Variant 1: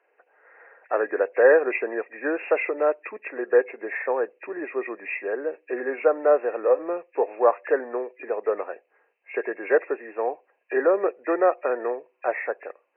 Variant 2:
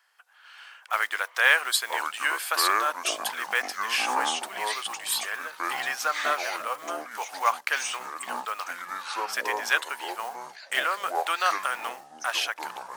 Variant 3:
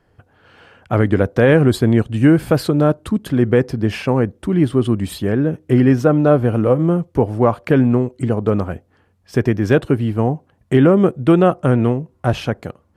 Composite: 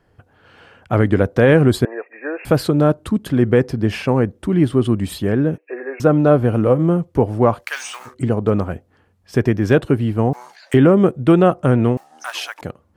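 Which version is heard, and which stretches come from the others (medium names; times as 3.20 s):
3
1.85–2.45 s: from 1
5.58–6.00 s: from 1
7.63–8.10 s: from 2, crossfade 0.10 s
10.33–10.74 s: from 2
11.97–12.61 s: from 2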